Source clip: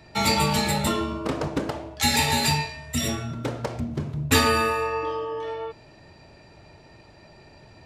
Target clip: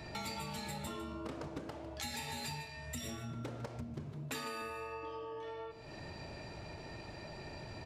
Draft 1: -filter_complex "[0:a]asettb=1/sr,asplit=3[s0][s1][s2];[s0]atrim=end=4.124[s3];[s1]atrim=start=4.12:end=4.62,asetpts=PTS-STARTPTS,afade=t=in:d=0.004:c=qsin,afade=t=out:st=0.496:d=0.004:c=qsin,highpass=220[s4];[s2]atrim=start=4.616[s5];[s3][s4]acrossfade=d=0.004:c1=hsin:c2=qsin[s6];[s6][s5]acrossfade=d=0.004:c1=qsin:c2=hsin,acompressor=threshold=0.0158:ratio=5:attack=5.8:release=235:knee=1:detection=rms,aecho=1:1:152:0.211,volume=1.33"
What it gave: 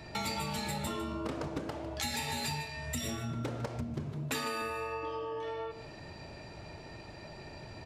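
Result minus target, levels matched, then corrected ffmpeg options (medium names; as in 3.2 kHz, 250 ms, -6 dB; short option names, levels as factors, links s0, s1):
compression: peak gain reduction -6.5 dB
-filter_complex "[0:a]asettb=1/sr,asplit=3[s0][s1][s2];[s0]atrim=end=4.124[s3];[s1]atrim=start=4.12:end=4.62,asetpts=PTS-STARTPTS,afade=t=in:d=0.004:c=qsin,afade=t=out:st=0.496:d=0.004:c=qsin,highpass=220[s4];[s2]atrim=start=4.616[s5];[s3][s4]acrossfade=d=0.004:c1=hsin:c2=qsin[s6];[s6][s5]acrossfade=d=0.004:c1=qsin:c2=hsin,acompressor=threshold=0.00631:ratio=5:attack=5.8:release=235:knee=1:detection=rms,aecho=1:1:152:0.211,volume=1.33"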